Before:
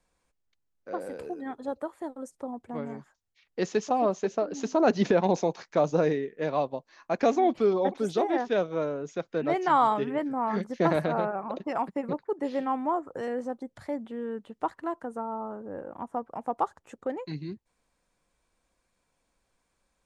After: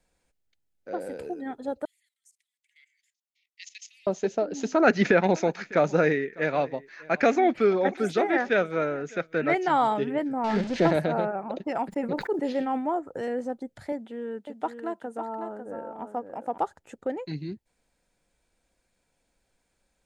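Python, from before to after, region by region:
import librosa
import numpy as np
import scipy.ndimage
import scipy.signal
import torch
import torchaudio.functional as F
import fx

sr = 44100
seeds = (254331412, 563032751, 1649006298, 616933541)

y = fx.chain(x, sr, fx.cheby1_highpass(hz=2000.0, order=6),
    fx.level_steps(step_db=15), at=(1.85, 4.07))
y = fx.chain(y, sr, fx.band_shelf(hz=1700.0, db=10.0, octaves=1.3),
    fx.echo_single(ms=602, db=-22.5), at=(4.72, 9.55))
y = fx.chain(y, sr, fx.zero_step(step_db=-31.0),
    fx.lowpass(hz=5700.0, slope=24), at=(10.44, 10.91))
y = fx.chain(y, sr, fx.peak_eq(hz=93.0, db=-11.5, octaves=0.75),
    fx.sustainer(db_per_s=84.0), at=(11.89, 12.96))
y = fx.chain(y, sr, fx.highpass(hz=270.0, slope=6),
    fx.echo_single(ms=550, db=-7.5), at=(13.92, 16.58))
y = fx.peak_eq(y, sr, hz=1100.0, db=-11.5, octaves=0.27)
y = fx.notch(y, sr, hz=5700.0, q=29.0)
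y = y * librosa.db_to_amplitude(2.0)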